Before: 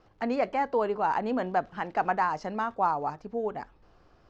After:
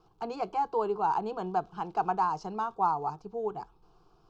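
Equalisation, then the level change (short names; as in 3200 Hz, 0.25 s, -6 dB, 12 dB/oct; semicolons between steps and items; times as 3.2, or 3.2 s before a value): fixed phaser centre 380 Hz, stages 8; 0.0 dB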